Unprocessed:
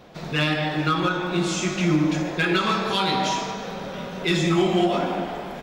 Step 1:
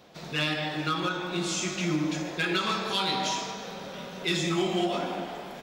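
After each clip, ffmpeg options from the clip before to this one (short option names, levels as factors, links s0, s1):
-filter_complex "[0:a]acrossover=split=3000[s0][s1];[s0]lowshelf=f=90:g=-9[s2];[s1]acontrast=38[s3];[s2][s3]amix=inputs=2:normalize=0,volume=0.473"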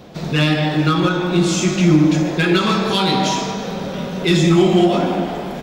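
-filter_complex "[0:a]lowshelf=f=440:g=11.5,asplit=2[s0][s1];[s1]asoftclip=type=tanh:threshold=0.0473,volume=0.299[s2];[s0][s2]amix=inputs=2:normalize=0,volume=2.11"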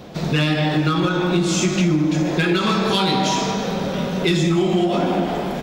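-af "acompressor=threshold=0.141:ratio=6,volume=1.26"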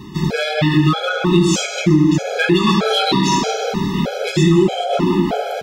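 -af "afftfilt=real='re*gt(sin(2*PI*1.6*pts/sr)*(1-2*mod(floor(b*sr/1024/430),2)),0)':imag='im*gt(sin(2*PI*1.6*pts/sr)*(1-2*mod(floor(b*sr/1024/430),2)),0)':win_size=1024:overlap=0.75,volume=2"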